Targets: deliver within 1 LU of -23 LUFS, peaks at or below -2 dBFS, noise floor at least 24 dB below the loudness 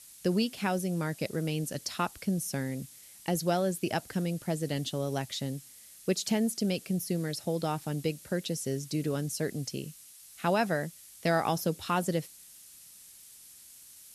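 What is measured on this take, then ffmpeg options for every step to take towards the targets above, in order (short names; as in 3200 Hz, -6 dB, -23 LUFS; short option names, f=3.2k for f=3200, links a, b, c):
noise floor -53 dBFS; noise floor target -56 dBFS; loudness -32.0 LUFS; peak -15.0 dBFS; loudness target -23.0 LUFS
-> -af "afftdn=nr=6:nf=-53"
-af "volume=9dB"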